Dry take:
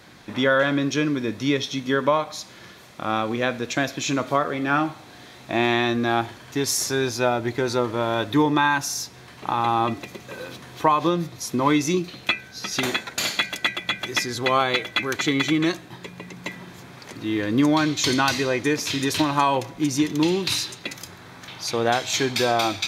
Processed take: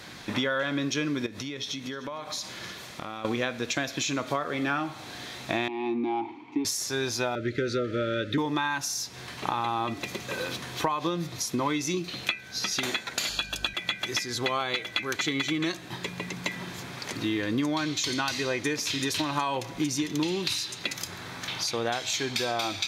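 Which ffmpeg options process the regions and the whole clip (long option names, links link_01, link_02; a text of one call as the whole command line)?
ffmpeg -i in.wav -filter_complex "[0:a]asettb=1/sr,asplit=3[link_01][link_02][link_03];[link_01]atrim=end=1.264[link_04];[link_02]atrim=start=1.26:end=3.25,asetpts=PTS-STARTPTS,afade=type=in:duration=0.004:curve=qsin,afade=type=out:start_time=1.986:duration=0.004:curve=qsin,acompressor=threshold=-35dB:ratio=12:attack=3.2:release=140:knee=1:detection=peak,aecho=1:1:302:0.112,atrim=end_sample=87759[link_05];[link_03]atrim=start=3.246[link_06];[link_04][link_05]acrossfade=duration=0.004:curve1=hsin:curve2=qsin[link_07];[link_07][link_06]acrossfade=duration=0.004:curve1=qsin:curve2=hsin,asettb=1/sr,asplit=3[link_08][link_09][link_10];[link_08]atrim=end=5.684[link_11];[link_09]atrim=start=5.68:end=6.65,asetpts=PTS-STARTPTS,afade=type=in:duration=0.004:curve=qsin,afade=type=out:start_time=0.966:duration=0.004:curve=qsin,tiltshelf=frequency=1200:gain=7.5,asplit=2[link_12][link_13];[link_13]highpass=frequency=720:poles=1,volume=13dB,asoftclip=type=tanh:threshold=-6dB[link_14];[link_12][link_14]amix=inputs=2:normalize=0,lowpass=frequency=6500:poles=1,volume=-6dB,asplit=3[link_15][link_16][link_17];[link_15]bandpass=frequency=300:width_type=q:width=8,volume=0dB[link_18];[link_16]bandpass=frequency=870:width_type=q:width=8,volume=-6dB[link_19];[link_17]bandpass=frequency=2240:width_type=q:width=8,volume=-9dB[link_20];[link_18][link_19][link_20]amix=inputs=3:normalize=0[link_21];[link_10]atrim=start=6.646[link_22];[link_11][link_21]acrossfade=duration=0.004:curve1=hsin:curve2=qsin[link_23];[link_23][link_22]acrossfade=duration=0.004:curve1=qsin:curve2=hsin,asettb=1/sr,asplit=3[link_24][link_25][link_26];[link_24]atrim=end=7.354[link_27];[link_25]atrim=start=7.35:end=8.38,asetpts=PTS-STARTPTS,afade=type=in:duration=0.004:curve=qsin,afade=type=out:start_time=1.026:duration=0.004:curve=qsin,asuperstop=centerf=880:order=20:qfactor=1.4,aemphasis=mode=reproduction:type=75fm[link_28];[link_26]atrim=start=8.376[link_29];[link_27][link_28]acrossfade=duration=0.004:curve1=hsin:curve2=qsin[link_30];[link_30][link_29]acrossfade=duration=0.004:curve1=qsin:curve2=hsin,asettb=1/sr,asplit=3[link_31][link_32][link_33];[link_31]atrim=end=13.294[link_34];[link_32]atrim=start=13.29:end=13.74,asetpts=PTS-STARTPTS,afade=type=in:duration=0.004:curve=qsin,afade=type=out:start_time=0.446:duration=0.004:curve=qsin,aeval=exprs='val(0)+0.0112*(sin(2*PI*50*n/s)+sin(2*PI*2*50*n/s)/2+sin(2*PI*3*50*n/s)/3+sin(2*PI*4*50*n/s)/4+sin(2*PI*5*50*n/s)/5)':channel_layout=same,asuperstop=centerf=2100:order=8:qfactor=4.3[link_35];[link_33]atrim=start=13.736[link_36];[link_34][link_35]acrossfade=duration=0.004:curve1=hsin:curve2=qsin[link_37];[link_37][link_36]acrossfade=duration=0.004:curve1=qsin:curve2=hsin,highshelf=frequency=2600:gain=10,acompressor=threshold=-27dB:ratio=6,highshelf=frequency=6500:gain=-8.5,volume=2dB" out.wav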